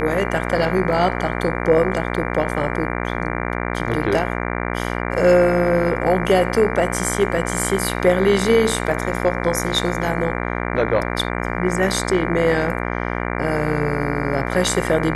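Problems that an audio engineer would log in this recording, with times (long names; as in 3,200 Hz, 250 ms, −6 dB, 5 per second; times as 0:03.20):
mains buzz 60 Hz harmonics 39 −24 dBFS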